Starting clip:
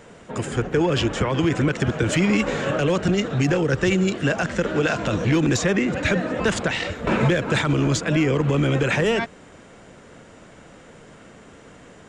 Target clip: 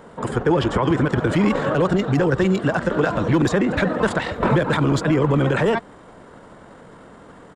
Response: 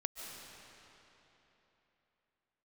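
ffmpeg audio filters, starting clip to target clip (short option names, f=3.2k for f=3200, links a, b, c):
-af "atempo=1.6,equalizer=f=100:t=o:w=0.67:g=-3,equalizer=f=1k:t=o:w=0.67:g=6,equalizer=f=2.5k:t=o:w=0.67:g=-8,equalizer=f=6.3k:t=o:w=0.67:g=-11,volume=2.5dB"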